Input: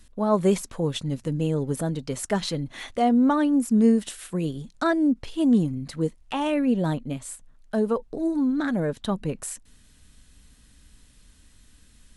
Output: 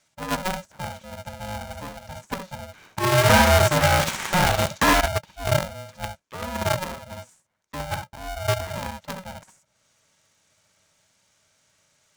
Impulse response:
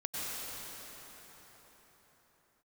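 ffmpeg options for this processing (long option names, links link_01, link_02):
-filter_complex "[0:a]acrossover=split=1100[link_01][link_02];[link_02]acompressor=threshold=-48dB:ratio=12[link_03];[link_01][link_03]amix=inputs=2:normalize=0,asettb=1/sr,asplit=3[link_04][link_05][link_06];[link_04]atrim=end=3.124[link_07];[link_05]atrim=start=3.12:end=5.01,asetpts=PTS-STARTPTS,afade=type=in:duration=0.004:curve=qsin,afade=type=out:start_time=1.886:duration=0.004:curve=qsin,asplit=2[link_08][link_09];[link_09]highpass=frequency=720:poles=1,volume=38dB,asoftclip=type=tanh:threshold=-9.5dB[link_10];[link_08][link_10]amix=inputs=2:normalize=0,lowpass=frequency=2700:poles=1,volume=-6dB[link_11];[link_06]atrim=start=5.006[link_12];[link_07][link_11]acrossfade=duration=0.004:curve1=hsin:curve2=qsin[link_13];[link_13][link_12]acrossfade=duration=0.004:curve1=qsin:curve2=hsin,highpass=200,equalizer=frequency=370:width_type=q:width=4:gain=-8,equalizer=frequency=530:width_type=q:width=4:gain=7,equalizer=frequency=1200:width_type=q:width=4:gain=5,equalizer=frequency=1800:width_type=q:width=4:gain=6,equalizer=frequency=6200:width_type=q:width=4:gain=9,lowpass=frequency=8500:width=0.5412,lowpass=frequency=8500:width=1.3066[link_14];[1:a]atrim=start_sample=2205,afade=type=out:start_time=0.17:duration=0.01,atrim=end_sample=7938,asetrate=74970,aresample=44100[link_15];[link_14][link_15]afir=irnorm=-1:irlink=0,asplit=2[link_16][link_17];[link_17]acrusher=bits=3:mix=0:aa=0.000001,volume=-3.5dB[link_18];[link_16][link_18]amix=inputs=2:normalize=0,aeval=exprs='val(0)*sgn(sin(2*PI*370*n/s))':channel_layout=same"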